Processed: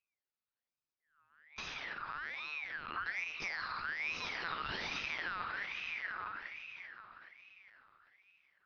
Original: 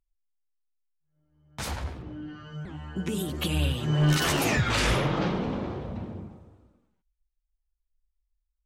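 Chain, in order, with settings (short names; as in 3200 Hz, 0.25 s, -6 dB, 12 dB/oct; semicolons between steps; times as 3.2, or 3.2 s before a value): tracing distortion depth 0.19 ms; HPF 94 Hz 12 dB/oct; low shelf 400 Hz -5 dB; compressor 4:1, threshold -45 dBFS, peak gain reduction 18.5 dB; diffused feedback echo 0.555 s, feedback 42%, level -7 dB; reverb RT60 0.35 s, pre-delay 5 ms, DRR 3 dB; LPC vocoder at 8 kHz pitch kept; ring modulator with a swept carrier 1900 Hz, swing 35%, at 1.2 Hz; gain +2 dB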